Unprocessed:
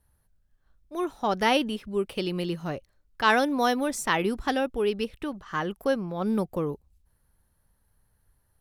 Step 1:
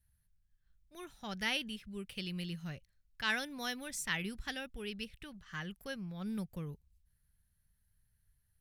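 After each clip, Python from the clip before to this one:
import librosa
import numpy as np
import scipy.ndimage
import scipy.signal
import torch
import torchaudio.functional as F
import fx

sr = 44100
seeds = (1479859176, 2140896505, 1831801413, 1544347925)

y = fx.band_shelf(x, sr, hz=560.0, db=-14.0, octaves=2.6)
y = F.gain(torch.from_numpy(y), -6.5).numpy()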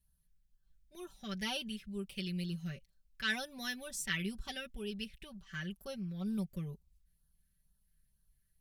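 y = x + 0.71 * np.pad(x, (int(5.2 * sr / 1000.0), 0))[:len(x)]
y = fx.filter_lfo_notch(y, sr, shape='sine', hz=2.1, low_hz=810.0, high_hz=2200.0, q=1.3)
y = F.gain(torch.from_numpy(y), -1.5).numpy()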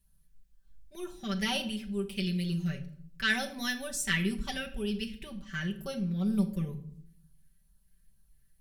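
y = fx.room_shoebox(x, sr, seeds[0], volume_m3=1000.0, walls='furnished', distance_m=1.2)
y = F.gain(torch.from_numpy(y), 5.5).numpy()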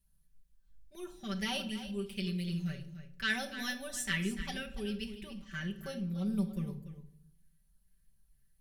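y = x + 10.0 ** (-12.0 / 20.0) * np.pad(x, (int(291 * sr / 1000.0), 0))[:len(x)]
y = F.gain(torch.from_numpy(y), -4.5).numpy()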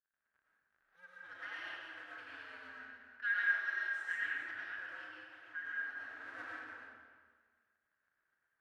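y = fx.cycle_switch(x, sr, every=2, mode='inverted')
y = fx.bandpass_q(y, sr, hz=1600.0, q=9.2)
y = fx.rev_freeverb(y, sr, rt60_s=1.5, hf_ratio=0.8, predelay_ms=65, drr_db=-6.0)
y = F.gain(torch.from_numpy(y), 1.0).numpy()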